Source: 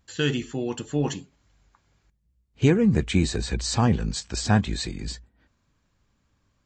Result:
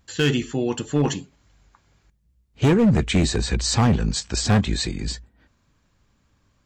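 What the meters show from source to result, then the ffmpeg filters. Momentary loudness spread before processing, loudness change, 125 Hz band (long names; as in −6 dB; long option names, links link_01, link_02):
11 LU, +3.0 dB, +3.0 dB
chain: -af "asoftclip=type=hard:threshold=-17.5dB,volume=5dB"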